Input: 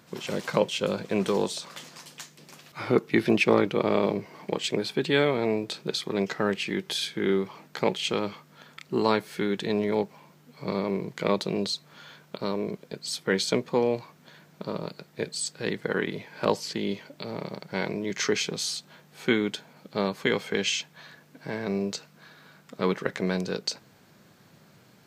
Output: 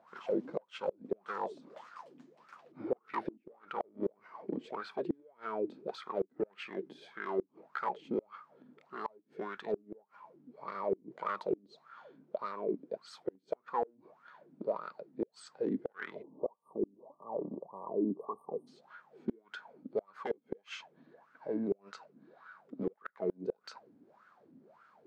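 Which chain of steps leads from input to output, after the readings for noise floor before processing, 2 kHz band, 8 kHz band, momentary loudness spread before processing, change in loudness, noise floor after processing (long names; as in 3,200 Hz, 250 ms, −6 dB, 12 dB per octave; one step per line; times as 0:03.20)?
−57 dBFS, −16.0 dB, below −25 dB, 13 LU, −11.5 dB, −71 dBFS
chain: gain into a clipping stage and back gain 21.5 dB
LFO wah 1.7 Hz 260–1,400 Hz, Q 9.5
parametric band 220 Hz +5 dB 0.23 octaves
gate with flip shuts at −31 dBFS, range −33 dB
time-frequency box erased 0:16.23–0:18.67, 1,200–8,500 Hz
level +9.5 dB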